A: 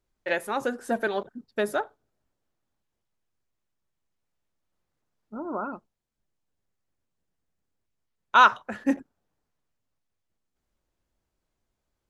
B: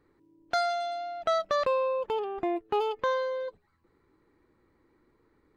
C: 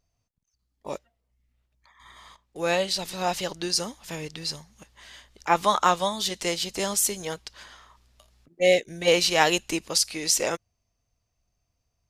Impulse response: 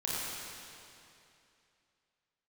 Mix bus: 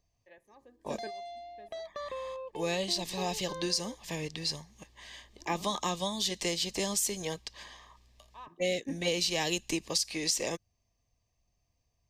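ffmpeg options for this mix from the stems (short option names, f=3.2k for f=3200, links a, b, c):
-filter_complex "[0:a]highshelf=f=4.4k:g=-8,volume=-12.5dB[a];[1:a]adelay=450,volume=-11dB[b];[2:a]equalizer=f=11k:t=o:w=0.41:g=-8.5,volume=-1dB,asplit=2[c][d];[d]apad=whole_len=533501[e];[a][e]sidechaingate=range=-17dB:threshold=-49dB:ratio=16:detection=peak[f];[f][b][c]amix=inputs=3:normalize=0,acrossover=split=360|3000[g][h][i];[h]acompressor=threshold=-38dB:ratio=2[j];[g][j][i]amix=inputs=3:normalize=0,asuperstop=centerf=1400:order=12:qfactor=4.5,acompressor=threshold=-26dB:ratio=6"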